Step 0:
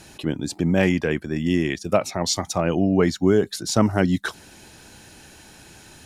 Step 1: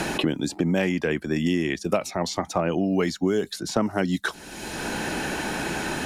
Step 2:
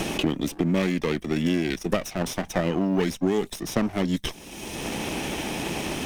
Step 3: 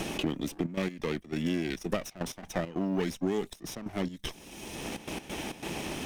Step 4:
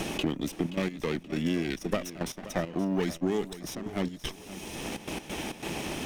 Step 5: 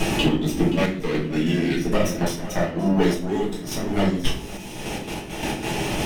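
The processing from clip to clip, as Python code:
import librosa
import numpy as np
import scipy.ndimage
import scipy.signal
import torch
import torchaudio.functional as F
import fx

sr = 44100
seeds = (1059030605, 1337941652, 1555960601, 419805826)

y1 = fx.peak_eq(x, sr, hz=99.0, db=-11.0, octaves=0.7)
y1 = fx.band_squash(y1, sr, depth_pct=100)
y1 = y1 * 10.0 ** (-2.5 / 20.0)
y2 = fx.lower_of_two(y1, sr, delay_ms=0.33)
y3 = fx.step_gate(y2, sr, bpm=136, pattern='xxxxxx.x.xx.x', floor_db=-12.0, edge_ms=4.5)
y3 = y3 * 10.0 ** (-6.5 / 20.0)
y4 = fx.echo_feedback(y3, sr, ms=526, feedback_pct=32, wet_db=-15)
y4 = y4 * 10.0 ** (1.5 / 20.0)
y5 = fx.room_shoebox(y4, sr, seeds[0], volume_m3=59.0, walls='mixed', distance_m=1.4)
y5 = fx.tremolo_random(y5, sr, seeds[1], hz=3.5, depth_pct=55)
y5 = y5 * 10.0 ** (4.0 / 20.0)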